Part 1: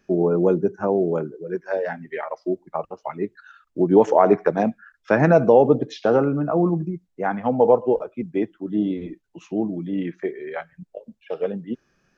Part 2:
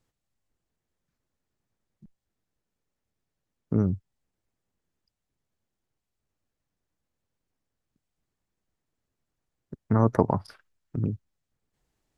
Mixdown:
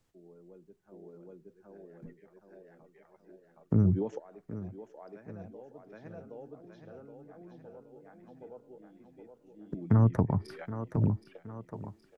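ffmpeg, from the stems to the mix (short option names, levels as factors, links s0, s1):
-filter_complex "[0:a]equalizer=f=960:w=1.2:g=-5,adelay=50,volume=0.237,asplit=2[s0][s1];[s1]volume=0.106[s2];[1:a]volume=1.26,asplit=3[s3][s4][s5];[s4]volume=0.126[s6];[s5]apad=whole_len=539091[s7];[s0][s7]sidechaingate=range=0.0708:threshold=0.00178:ratio=16:detection=peak[s8];[s2][s6]amix=inputs=2:normalize=0,aecho=0:1:770|1540|2310|3080|3850|4620|5390:1|0.47|0.221|0.104|0.0488|0.0229|0.0108[s9];[s8][s3][s9]amix=inputs=3:normalize=0,acrossover=split=200[s10][s11];[s11]acompressor=threshold=0.0251:ratio=5[s12];[s10][s12]amix=inputs=2:normalize=0"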